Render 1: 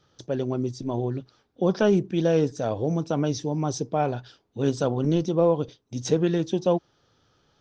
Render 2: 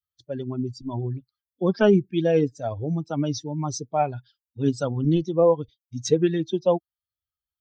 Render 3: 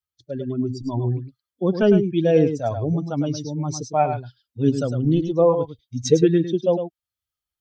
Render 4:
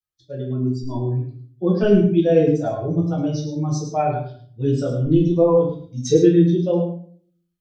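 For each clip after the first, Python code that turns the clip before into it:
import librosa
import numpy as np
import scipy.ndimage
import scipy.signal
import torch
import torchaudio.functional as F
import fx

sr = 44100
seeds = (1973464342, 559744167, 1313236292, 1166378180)

y1 = fx.bin_expand(x, sr, power=2.0)
y1 = y1 * librosa.db_to_amplitude(5.0)
y2 = fx.rotary(y1, sr, hz=0.65)
y2 = y2 + 10.0 ** (-8.5 / 20.0) * np.pad(y2, (int(105 * sr / 1000.0), 0))[:len(y2)]
y2 = y2 * librosa.db_to_amplitude(4.5)
y3 = fx.room_shoebox(y2, sr, seeds[0], volume_m3=45.0, walls='mixed', distance_m=1.0)
y3 = y3 * librosa.db_to_amplitude(-6.0)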